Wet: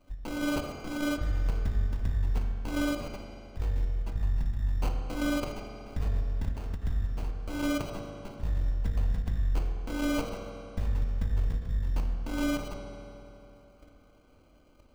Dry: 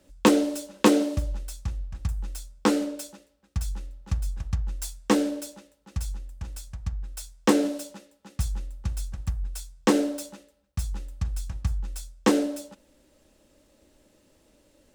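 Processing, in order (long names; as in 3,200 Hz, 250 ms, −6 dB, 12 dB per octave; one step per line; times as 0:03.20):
lower of the sound and its delayed copy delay 3.4 ms
output level in coarse steps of 12 dB
sample-rate reduction 1,800 Hz, jitter 0%
low-shelf EQ 84 Hz +10 dB
compressor whose output falls as the input rises −32 dBFS, ratio −1
high-shelf EQ 11,000 Hz −9 dB
hum removal 60.03 Hz, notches 37
convolution reverb RT60 3.2 s, pre-delay 3 ms, DRR 2 dB
every ending faded ahead of time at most 180 dB per second
level +3.5 dB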